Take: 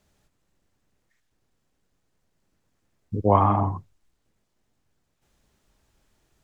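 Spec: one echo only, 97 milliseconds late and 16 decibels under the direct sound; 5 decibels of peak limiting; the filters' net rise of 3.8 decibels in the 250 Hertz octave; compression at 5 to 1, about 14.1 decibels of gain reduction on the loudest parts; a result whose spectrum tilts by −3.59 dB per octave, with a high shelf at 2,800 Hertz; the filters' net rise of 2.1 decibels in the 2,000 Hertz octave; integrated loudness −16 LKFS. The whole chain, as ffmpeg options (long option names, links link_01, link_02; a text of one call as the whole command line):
ffmpeg -i in.wav -af "equalizer=frequency=250:width_type=o:gain=5,equalizer=frequency=2000:width_type=o:gain=5,highshelf=frequency=2800:gain=-6.5,acompressor=threshold=-28dB:ratio=5,alimiter=limit=-22.5dB:level=0:latency=1,aecho=1:1:97:0.158,volume=19.5dB" out.wav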